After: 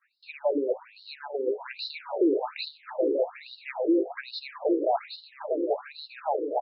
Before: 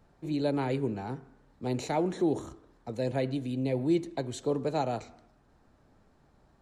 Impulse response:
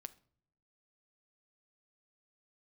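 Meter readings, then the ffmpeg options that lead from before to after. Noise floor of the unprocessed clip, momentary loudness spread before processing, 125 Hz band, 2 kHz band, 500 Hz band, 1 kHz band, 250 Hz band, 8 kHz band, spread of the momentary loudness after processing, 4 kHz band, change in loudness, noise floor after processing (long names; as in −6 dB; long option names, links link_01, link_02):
−64 dBFS, 11 LU, below −35 dB, +5.0 dB, +5.5 dB, +4.0 dB, +1.0 dB, below −30 dB, 14 LU, +7.5 dB, +2.0 dB, −56 dBFS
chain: -filter_complex "[0:a]asuperstop=centerf=3200:order=8:qfactor=3.5,highshelf=frequency=3100:gain=10.5,agate=range=-33dB:threshold=-52dB:ratio=3:detection=peak,aecho=1:1:770|1232|1509|1676|1775:0.631|0.398|0.251|0.158|0.1,acrusher=bits=8:mode=log:mix=0:aa=0.000001,aemphasis=mode=reproduction:type=75kf,bandreject=frequency=60:width_type=h:width=6,bandreject=frequency=120:width_type=h:width=6,bandreject=frequency=180:width_type=h:width=6,bandreject=frequency=240:width_type=h:width=6,bandreject=frequency=300:width_type=h:width=6,bandreject=frequency=360:width_type=h:width=6,bandreject=frequency=420:width_type=h:width=6,aresample=11025,aresample=44100,asplit=2[link_01][link_02];[1:a]atrim=start_sample=2205[link_03];[link_02][link_03]afir=irnorm=-1:irlink=0,volume=2.5dB[link_04];[link_01][link_04]amix=inputs=2:normalize=0,apsyclip=21dB,acompressor=threshold=-17dB:ratio=8,afftfilt=real='re*between(b*sr/1024,380*pow(4100/380,0.5+0.5*sin(2*PI*1.2*pts/sr))/1.41,380*pow(4100/380,0.5+0.5*sin(2*PI*1.2*pts/sr))*1.41)':imag='im*between(b*sr/1024,380*pow(4100/380,0.5+0.5*sin(2*PI*1.2*pts/sr))/1.41,380*pow(4100/380,0.5+0.5*sin(2*PI*1.2*pts/sr))*1.41)':win_size=1024:overlap=0.75,volume=-2dB"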